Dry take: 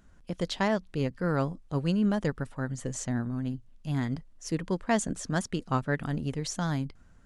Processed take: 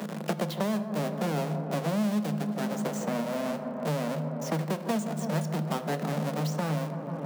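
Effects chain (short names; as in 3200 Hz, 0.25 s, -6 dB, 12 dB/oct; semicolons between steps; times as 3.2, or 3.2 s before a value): half-waves squared off; in parallel at 0 dB: limiter -24 dBFS, peak gain reduction 10 dB; on the sum: rippled Chebyshev high-pass 150 Hz, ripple 9 dB; dark delay 0.16 s, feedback 71%, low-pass 1100 Hz, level -10 dB; on a send at -9.5 dB: reverb RT60 0.65 s, pre-delay 6 ms; on the sum: three-band squash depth 100%; gain -5 dB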